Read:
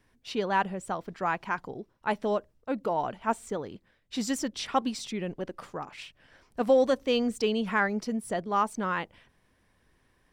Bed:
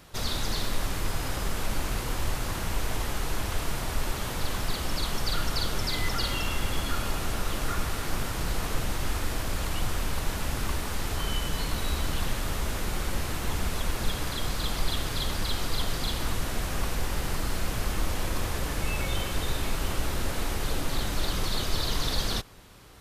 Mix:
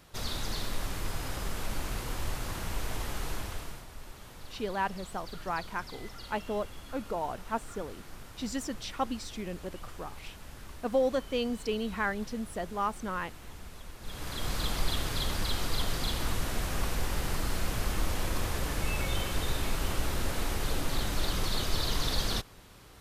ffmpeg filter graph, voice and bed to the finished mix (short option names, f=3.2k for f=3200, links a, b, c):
-filter_complex "[0:a]adelay=4250,volume=-5dB[a];[1:a]volume=10dB,afade=t=out:st=3.29:d=0.57:silence=0.251189,afade=t=in:st=14.01:d=0.54:silence=0.177828[b];[a][b]amix=inputs=2:normalize=0"